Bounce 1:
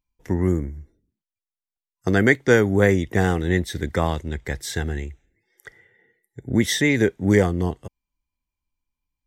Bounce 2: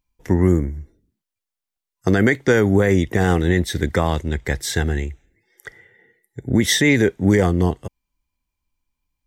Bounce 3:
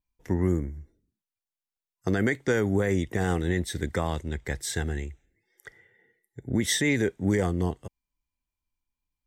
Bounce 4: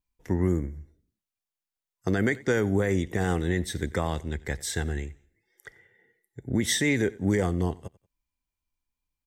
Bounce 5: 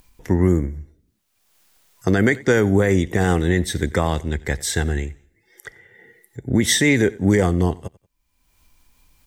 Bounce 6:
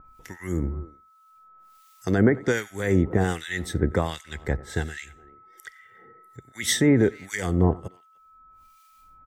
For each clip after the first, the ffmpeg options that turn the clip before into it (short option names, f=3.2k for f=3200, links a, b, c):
-af "alimiter=level_in=10dB:limit=-1dB:release=50:level=0:latency=1,volume=-4.5dB"
-af "adynamicequalizer=threshold=0.00447:dfrequency=8200:dqfactor=2.7:tfrequency=8200:tqfactor=2.7:attack=5:release=100:ratio=0.375:range=3:mode=boostabove:tftype=bell,volume=-9dB"
-af "aecho=1:1:92|184:0.0794|0.0254"
-af "acompressor=mode=upward:threshold=-46dB:ratio=2.5,volume=8dB"
-filter_complex "[0:a]aeval=exprs='val(0)+0.00447*sin(2*PI*1300*n/s)':c=same,asplit=2[a][b];[b]adelay=300,highpass=300,lowpass=3.4k,asoftclip=type=hard:threshold=-15dB,volume=-22dB[c];[a][c]amix=inputs=2:normalize=0,acrossover=split=1500[d][e];[d]aeval=exprs='val(0)*(1-1/2+1/2*cos(2*PI*1.3*n/s))':c=same[f];[e]aeval=exprs='val(0)*(1-1/2-1/2*cos(2*PI*1.3*n/s))':c=same[g];[f][g]amix=inputs=2:normalize=0"